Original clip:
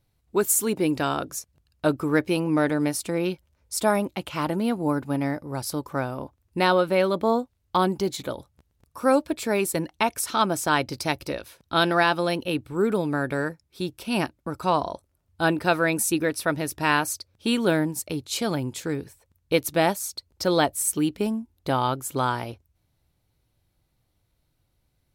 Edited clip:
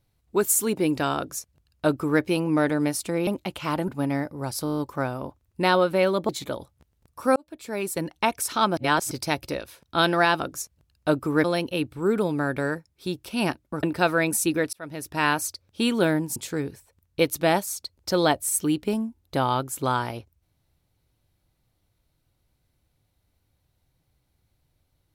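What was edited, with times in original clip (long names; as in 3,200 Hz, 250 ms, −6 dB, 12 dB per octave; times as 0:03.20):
0:01.17–0:02.21: duplicate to 0:12.18
0:03.27–0:03.98: remove
0:04.59–0:04.99: remove
0:05.75: stutter 0.02 s, 8 plays
0:07.26–0:08.07: remove
0:09.14–0:09.96: fade in
0:10.55–0:10.89: reverse
0:14.57–0:15.49: remove
0:16.39–0:17.15: fade in equal-power
0:18.02–0:18.69: remove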